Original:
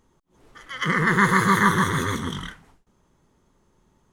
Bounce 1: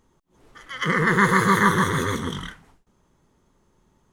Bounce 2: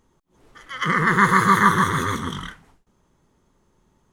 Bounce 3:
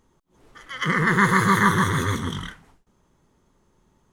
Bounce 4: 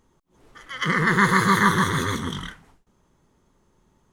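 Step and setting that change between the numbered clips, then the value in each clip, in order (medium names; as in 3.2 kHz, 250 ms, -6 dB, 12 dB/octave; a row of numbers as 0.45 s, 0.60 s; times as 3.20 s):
dynamic bell, frequency: 480 Hz, 1.2 kHz, 100 Hz, 4.3 kHz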